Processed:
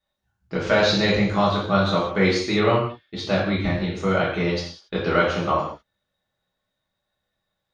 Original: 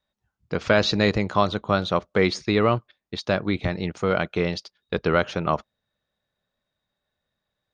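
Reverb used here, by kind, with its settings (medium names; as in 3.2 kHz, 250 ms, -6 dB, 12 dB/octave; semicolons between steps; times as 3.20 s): gated-style reverb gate 230 ms falling, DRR -7 dB; trim -5.5 dB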